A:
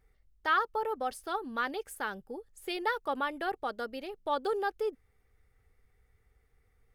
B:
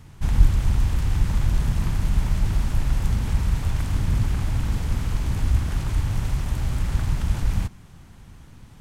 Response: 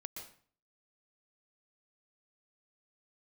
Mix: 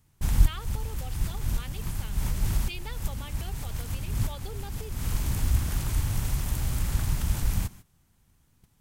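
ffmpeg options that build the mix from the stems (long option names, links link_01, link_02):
-filter_complex "[0:a]highshelf=frequency=2000:width_type=q:width=3:gain=7.5,volume=-12.5dB,asplit=2[link_01][link_02];[1:a]aemphasis=mode=production:type=50fm,volume=-3.5dB[link_03];[link_02]apad=whole_len=388352[link_04];[link_03][link_04]sidechaincompress=threshold=-54dB:ratio=3:attack=11:release=180[link_05];[link_01][link_05]amix=inputs=2:normalize=0,agate=range=-16dB:threshold=-43dB:ratio=16:detection=peak"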